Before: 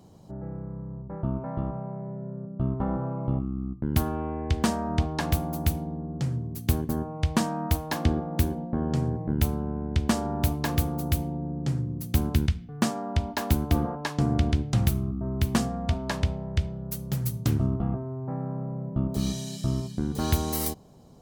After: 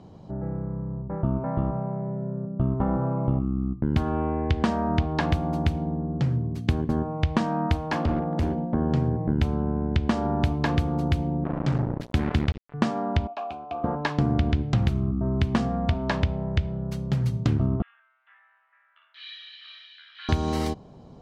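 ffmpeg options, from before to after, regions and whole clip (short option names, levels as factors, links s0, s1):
-filter_complex "[0:a]asettb=1/sr,asplit=3[s0][s1][s2];[s0]atrim=end=7.874[s3];[s1]atrim=start=7.87:end=8.74,asetpts=PTS-STARTPTS,afade=t=in:d=0.004:c=qsin,afade=t=out:st=0.866:d=0.004:c=qsin,highpass=58,bandreject=f=3800:w=13,asoftclip=type=hard:threshold=0.0562[s4];[s2]atrim=start=8.736[s5];[s3][s4]acrossfade=d=0.004:c1=hsin:c2=qsin[s6];[s6][s5]acrossfade=d=0.004:c1=qsin:c2=hsin,asettb=1/sr,asplit=3[s7][s8][s9];[s7]atrim=end=11.444[s10];[s8]atrim=start=11.44:end=12.74,asetpts=PTS-STARTPTS,afade=t=in:d=0.004:c=qsin,afade=t=out:st=1.296:d=0.004:c=qsin,lowshelf=f=150:g=-3,acrusher=bits=4:mix=0:aa=0.5[s11];[s9]atrim=start=12.736[s12];[s10][s11]acrossfade=d=0.004:c1=hsin:c2=qsin[s13];[s13][s12]acrossfade=d=0.004:c1=qsin:c2=hsin,asettb=1/sr,asplit=3[s14][s15][s16];[s14]atrim=end=13.274[s17];[s15]atrim=start=13.27:end=13.84,asetpts=PTS-STARTPTS,afade=t=in:d=0.004:c=qsin,afade=t=out:st=0.566:d=0.004:c=qsin,highshelf=f=3600:g=8.5,acrusher=bits=9:mode=log:mix=0:aa=0.000001,asplit=3[s18][s19][s20];[s18]bandpass=f=730:t=q:w=8,volume=1[s21];[s19]bandpass=f=1090:t=q:w=8,volume=0.501[s22];[s20]bandpass=f=2440:t=q:w=8,volume=0.355[s23];[s21][s22][s23]amix=inputs=3:normalize=0[s24];[s16]atrim=start=13.836[s25];[s17][s24]acrossfade=d=0.004:c1=hsin:c2=qsin[s26];[s26][s25]acrossfade=d=0.004:c1=qsin:c2=hsin,asettb=1/sr,asplit=3[s27][s28][s29];[s27]atrim=end=17.824[s30];[s28]atrim=start=17.82:end=20.29,asetpts=PTS-STARTPTS,afade=t=in:d=0.004:c=qsin,afade=t=out:st=2.466:d=0.004:c=qsin,asuperpass=centerf=2500:order=8:qfactor=1.1,aecho=1:1:55|445:0.596|0.562,atrim=end_sample=108927[s31];[s29]atrim=start=20.286[s32];[s30][s31]acrossfade=d=0.004:c1=hsin:c2=qsin[s33];[s33][s32]acrossfade=d=0.004:c1=qsin:c2=hsin,lowpass=3400,acompressor=threshold=0.0562:ratio=3,volume=1.88"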